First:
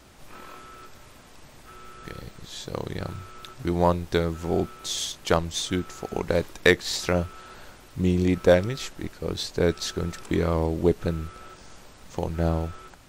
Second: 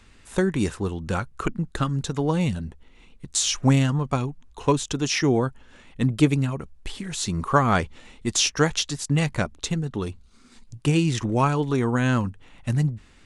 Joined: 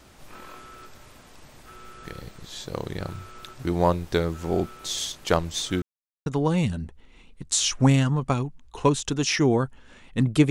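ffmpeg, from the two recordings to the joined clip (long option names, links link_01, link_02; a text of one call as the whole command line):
ffmpeg -i cue0.wav -i cue1.wav -filter_complex "[0:a]apad=whole_dur=10.5,atrim=end=10.5,asplit=2[link_01][link_02];[link_01]atrim=end=5.82,asetpts=PTS-STARTPTS,afade=type=out:start_time=5.816:duration=0.004:curve=hsin[link_03];[link_02]atrim=start=5.82:end=6.26,asetpts=PTS-STARTPTS,volume=0[link_04];[1:a]atrim=start=2.09:end=6.33,asetpts=PTS-STARTPTS,afade=type=in:duration=0.004:curve=hsin[link_05];[link_03][link_04][link_05]concat=n=3:v=0:a=1" out.wav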